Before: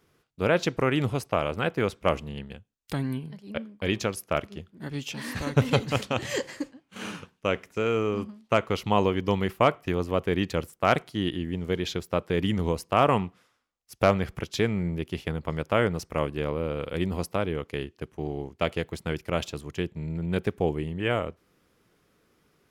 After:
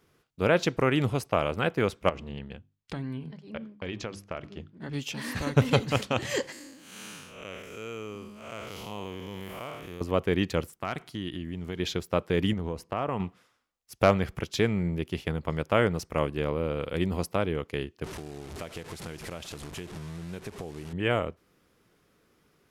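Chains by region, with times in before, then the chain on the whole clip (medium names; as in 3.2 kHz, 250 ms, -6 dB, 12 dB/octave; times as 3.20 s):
2.09–4.93 s: hum notches 50/100/150/200/250/300/350 Hz + compression 4:1, threshold -31 dBFS + distance through air 89 m
6.52–10.01 s: spectral blur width 181 ms + pre-emphasis filter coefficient 0.8 + level flattener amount 50%
10.73–11.80 s: peaking EQ 520 Hz -7.5 dB 0.54 oct + compression 2.5:1, threshold -32 dBFS
12.53–13.20 s: treble shelf 3 kHz -9.5 dB + compression 2.5:1, threshold -29 dBFS
18.04–20.93 s: one-bit delta coder 64 kbps, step -33.5 dBFS + compression 4:1, threshold -36 dBFS
whole clip: none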